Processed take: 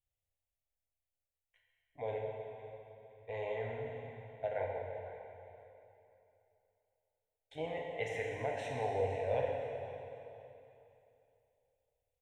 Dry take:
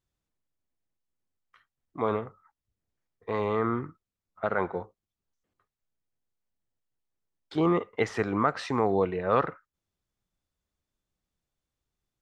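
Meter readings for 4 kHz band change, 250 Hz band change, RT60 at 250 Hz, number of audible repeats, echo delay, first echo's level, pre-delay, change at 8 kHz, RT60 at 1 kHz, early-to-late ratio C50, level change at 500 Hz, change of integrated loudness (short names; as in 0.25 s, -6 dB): -8.5 dB, -21.5 dB, 3.1 s, 2, 0.511 s, -15.0 dB, 8 ms, n/a, 3.0 s, 0.5 dB, -7.5 dB, -11.0 dB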